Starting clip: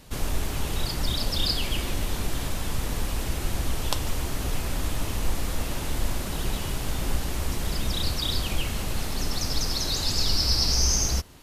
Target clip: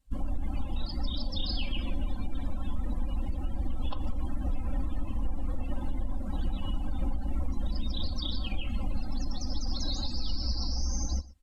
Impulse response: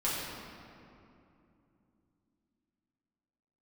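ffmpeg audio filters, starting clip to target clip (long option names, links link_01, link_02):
-filter_complex "[0:a]acrossover=split=3200[link_01][link_02];[link_02]acompressor=threshold=-34dB:ratio=4:attack=1:release=60[link_03];[link_01][link_03]amix=inputs=2:normalize=0,equalizer=frequency=420:width_type=o:width=0.23:gain=-14.5,afftdn=noise_reduction=30:noise_floor=-33,equalizer=frequency=8500:width_type=o:width=0.5:gain=6.5,aecho=1:1:3.8:0.76,alimiter=limit=-19.5dB:level=0:latency=1:release=176,aecho=1:1:120:0.106,volume=-1.5dB"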